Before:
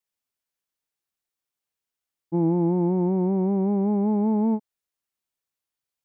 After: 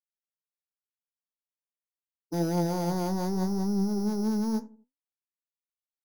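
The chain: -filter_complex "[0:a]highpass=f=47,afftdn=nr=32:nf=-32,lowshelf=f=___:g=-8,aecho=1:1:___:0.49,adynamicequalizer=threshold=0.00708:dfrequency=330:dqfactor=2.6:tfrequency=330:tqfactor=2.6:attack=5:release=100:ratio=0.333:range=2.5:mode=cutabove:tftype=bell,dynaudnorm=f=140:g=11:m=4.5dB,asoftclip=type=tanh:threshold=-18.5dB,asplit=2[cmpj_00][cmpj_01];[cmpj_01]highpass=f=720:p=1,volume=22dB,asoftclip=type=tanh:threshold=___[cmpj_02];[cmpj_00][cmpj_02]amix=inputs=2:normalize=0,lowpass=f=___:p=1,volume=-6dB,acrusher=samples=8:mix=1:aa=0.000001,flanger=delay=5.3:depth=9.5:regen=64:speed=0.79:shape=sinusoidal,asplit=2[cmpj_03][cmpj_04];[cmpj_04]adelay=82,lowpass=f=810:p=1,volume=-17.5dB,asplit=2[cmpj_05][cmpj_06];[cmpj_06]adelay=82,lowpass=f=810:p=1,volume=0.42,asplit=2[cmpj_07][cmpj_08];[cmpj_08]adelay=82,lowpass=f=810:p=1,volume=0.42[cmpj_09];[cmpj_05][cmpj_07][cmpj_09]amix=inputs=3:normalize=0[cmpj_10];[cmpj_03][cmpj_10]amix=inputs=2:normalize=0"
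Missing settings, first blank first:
170, 4.3, -18.5dB, 1100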